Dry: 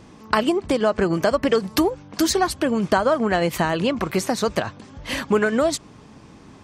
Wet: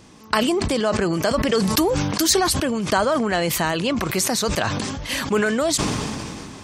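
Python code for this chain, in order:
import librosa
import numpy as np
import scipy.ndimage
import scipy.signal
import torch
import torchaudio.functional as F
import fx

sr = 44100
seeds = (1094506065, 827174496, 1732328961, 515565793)

y = fx.high_shelf(x, sr, hz=3000.0, db=10.0)
y = fx.sustainer(y, sr, db_per_s=23.0)
y = y * 10.0 ** (-3.0 / 20.0)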